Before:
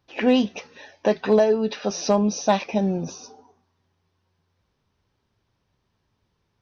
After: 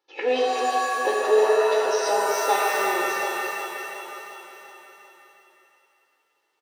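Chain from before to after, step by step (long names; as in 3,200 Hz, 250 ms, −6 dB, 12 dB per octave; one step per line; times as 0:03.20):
high-pass filter 310 Hz 24 dB per octave
comb filter 2.3 ms, depth 98%
repeating echo 363 ms, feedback 58%, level −9 dB
reverb with rising layers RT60 2.1 s, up +7 semitones, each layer −2 dB, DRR 0.5 dB
level −6.5 dB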